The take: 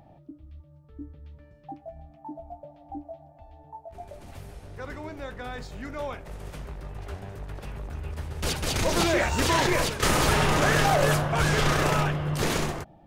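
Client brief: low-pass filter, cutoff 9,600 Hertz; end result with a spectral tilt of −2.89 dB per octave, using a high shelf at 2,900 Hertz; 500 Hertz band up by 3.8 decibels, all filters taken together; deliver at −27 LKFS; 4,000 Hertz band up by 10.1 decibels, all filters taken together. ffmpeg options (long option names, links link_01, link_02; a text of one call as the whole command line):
ffmpeg -i in.wav -af "lowpass=9600,equalizer=frequency=500:width_type=o:gain=4.5,highshelf=frequency=2900:gain=6,equalizer=frequency=4000:width_type=o:gain=8,volume=-7.5dB" out.wav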